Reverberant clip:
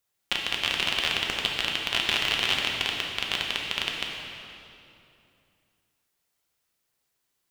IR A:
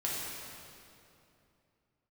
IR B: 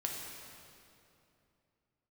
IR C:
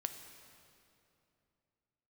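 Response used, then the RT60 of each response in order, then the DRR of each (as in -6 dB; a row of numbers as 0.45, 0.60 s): B; 2.8, 2.8, 2.8 s; -6.5, -1.0, 6.5 dB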